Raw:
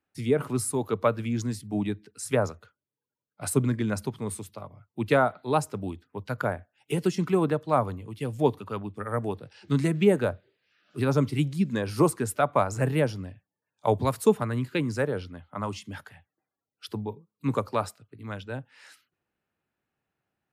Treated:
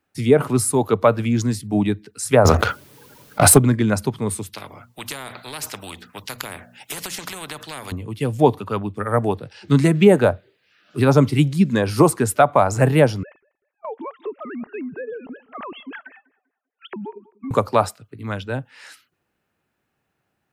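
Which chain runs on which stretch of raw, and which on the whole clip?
2.45–3.58 s: waveshaping leveller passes 2 + peaking EQ 7.4 kHz -3.5 dB 0.63 oct + level flattener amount 70%
4.53–7.92 s: hum notches 60/120/180/240 Hz + compression 3:1, threshold -27 dBFS + spectrum-flattening compressor 4:1
13.23–17.51 s: formants replaced by sine waves + compression 4:1, threshold -39 dBFS + filtered feedback delay 195 ms, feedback 33%, low-pass 1.7 kHz, level -21 dB
whole clip: dynamic bell 750 Hz, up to +5 dB, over -37 dBFS, Q 2.3; loudness maximiser +10 dB; trim -1 dB

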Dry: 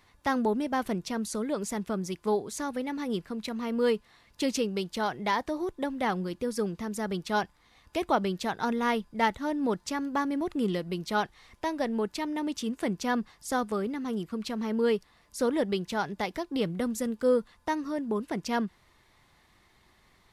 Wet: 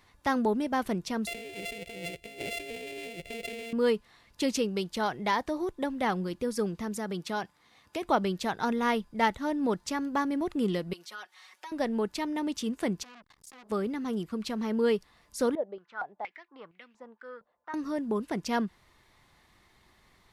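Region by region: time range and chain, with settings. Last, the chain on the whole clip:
1.27–3.73 s: sorted samples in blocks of 64 samples + FFT filter 100 Hz 0 dB, 260 Hz -8 dB, 430 Hz +6 dB, 700 Hz -6 dB, 1.2 kHz -24 dB, 2.3 kHz +9 dB, 5.8 kHz -6 dB, 8.9 kHz -1 dB, 13 kHz -6 dB + compressor with a negative ratio -40 dBFS
6.97–8.05 s: high-pass 120 Hz + compression 2:1, threshold -31 dBFS
10.93–11.72 s: high-pass 860 Hz + comb 5.4 ms, depth 96% + compression 2.5:1, threshold -46 dBFS
13.03–13.70 s: compression 4:1, threshold -45 dBFS + transformer saturation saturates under 2.6 kHz
15.55–17.74 s: distance through air 73 m + step-sequenced band-pass 4.3 Hz 600–2500 Hz
whole clip: none

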